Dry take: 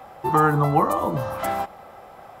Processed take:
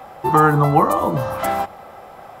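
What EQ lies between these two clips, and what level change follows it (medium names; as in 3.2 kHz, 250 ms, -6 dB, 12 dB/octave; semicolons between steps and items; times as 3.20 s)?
hum notches 50/100 Hz; +4.5 dB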